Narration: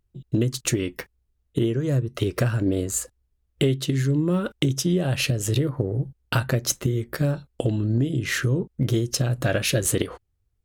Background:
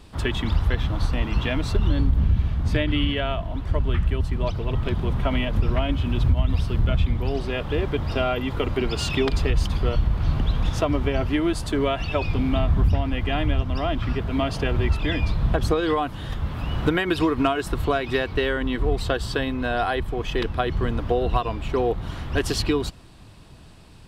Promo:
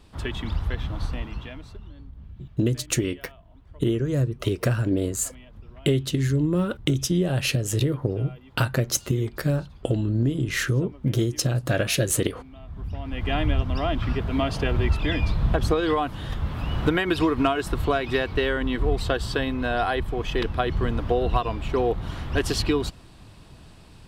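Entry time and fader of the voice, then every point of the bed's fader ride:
2.25 s, -0.5 dB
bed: 1.11 s -5.5 dB
1.93 s -23.5 dB
12.56 s -23.5 dB
13.31 s -0.5 dB

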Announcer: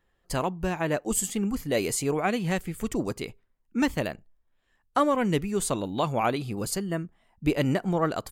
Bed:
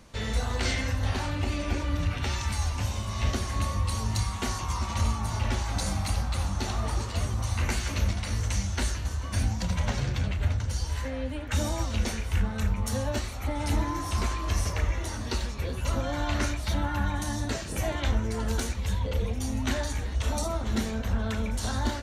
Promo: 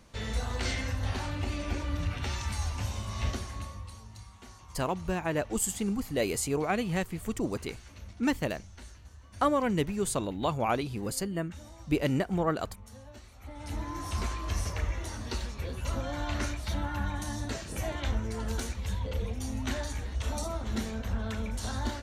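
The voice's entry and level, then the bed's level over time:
4.45 s, -3.0 dB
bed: 3.26 s -4 dB
4.09 s -20 dB
13.17 s -20 dB
14.05 s -4.5 dB

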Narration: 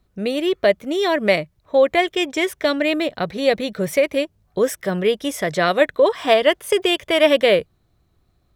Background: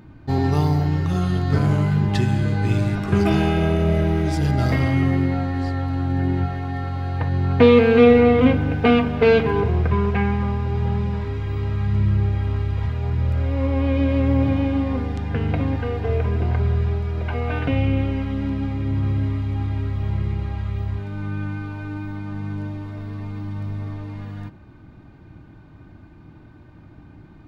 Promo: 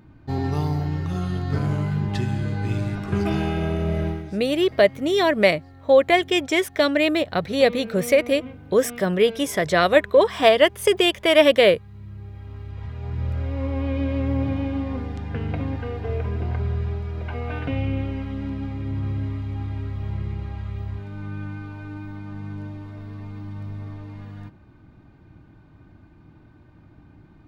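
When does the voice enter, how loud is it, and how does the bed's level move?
4.15 s, 0.0 dB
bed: 4.08 s -5 dB
4.39 s -22.5 dB
11.92 s -22.5 dB
13.23 s -5 dB

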